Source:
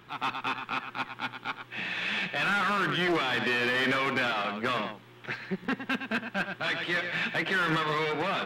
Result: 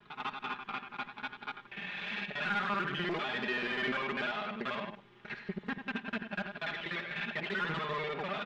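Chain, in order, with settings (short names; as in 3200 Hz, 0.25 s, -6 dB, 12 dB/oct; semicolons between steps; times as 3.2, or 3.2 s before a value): local time reversal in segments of 49 ms; LPF 4700 Hz 12 dB/oct; comb 4.9 ms; vibrato 0.96 Hz 31 cents; gain -8 dB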